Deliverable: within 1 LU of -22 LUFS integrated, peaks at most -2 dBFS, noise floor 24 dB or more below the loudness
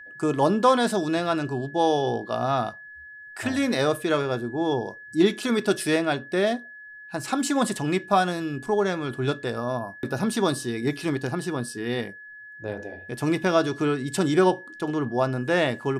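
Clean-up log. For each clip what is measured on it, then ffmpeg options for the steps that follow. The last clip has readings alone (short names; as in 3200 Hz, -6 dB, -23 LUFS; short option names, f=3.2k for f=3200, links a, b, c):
steady tone 1700 Hz; tone level -41 dBFS; loudness -25.0 LUFS; peak -8.0 dBFS; loudness target -22.0 LUFS
-> -af "bandreject=f=1.7k:w=30"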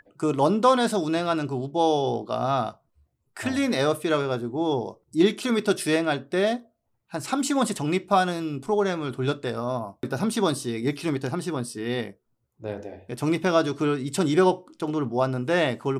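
steady tone none; loudness -25.0 LUFS; peak -8.0 dBFS; loudness target -22.0 LUFS
-> -af "volume=3dB"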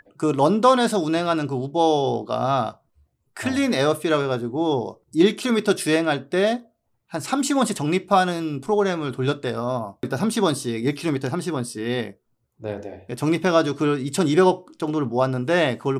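loudness -22.0 LUFS; peak -5.0 dBFS; noise floor -70 dBFS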